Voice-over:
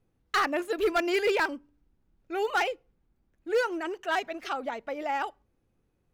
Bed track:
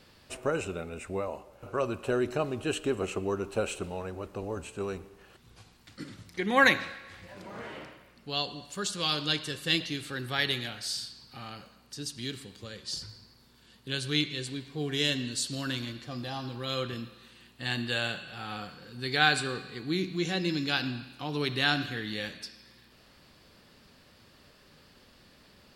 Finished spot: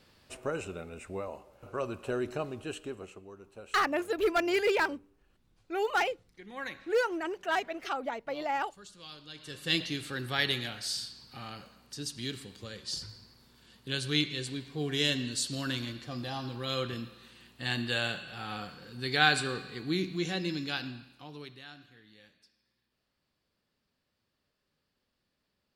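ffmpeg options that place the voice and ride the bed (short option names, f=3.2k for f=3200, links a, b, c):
-filter_complex "[0:a]adelay=3400,volume=-1.5dB[a];[1:a]volume=13.5dB,afade=t=out:st=2.35:d=0.88:silence=0.199526,afade=t=in:st=9.34:d=0.46:silence=0.125893,afade=t=out:st=19.91:d=1.73:silence=0.0749894[b];[a][b]amix=inputs=2:normalize=0"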